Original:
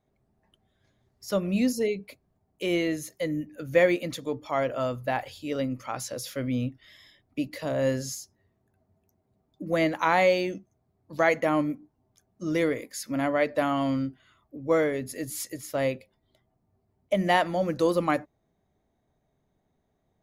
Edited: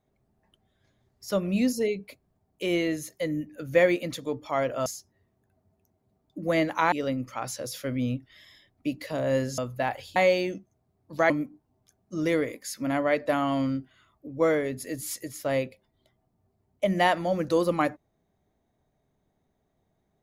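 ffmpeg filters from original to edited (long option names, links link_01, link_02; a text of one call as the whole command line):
ffmpeg -i in.wav -filter_complex "[0:a]asplit=6[link_01][link_02][link_03][link_04][link_05][link_06];[link_01]atrim=end=4.862[link_07];[link_02]atrim=start=8.098:end=10.162[link_08];[link_03]atrim=start=5.438:end=8.102[link_09];[link_04]atrim=start=4.858:end=5.442[link_10];[link_05]atrim=start=10.158:end=11.302[link_11];[link_06]atrim=start=11.588[link_12];[link_07][link_08]acrossfade=duration=0.004:curve1=hsin:curve2=hsin[link_13];[link_13][link_09]acrossfade=duration=0.004:curve1=hsin:curve2=hsin[link_14];[link_14][link_10]acrossfade=duration=0.004:curve1=hsin:curve2=hsin[link_15];[link_15][link_11]acrossfade=duration=0.004:curve1=hsin:curve2=hsin[link_16];[link_16][link_12]acrossfade=duration=0.004:curve1=hsin:curve2=hsin" out.wav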